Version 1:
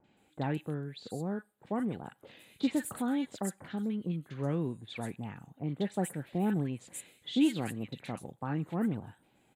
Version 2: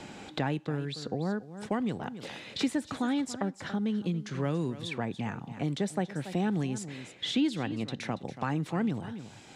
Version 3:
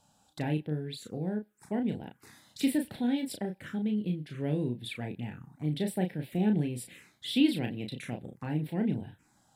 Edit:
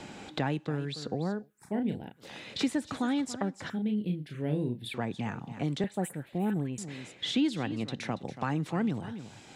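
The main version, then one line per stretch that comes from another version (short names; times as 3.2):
2
1.39–2.28 from 3, crossfade 0.24 s
3.7–4.94 from 3
5.84–6.78 from 1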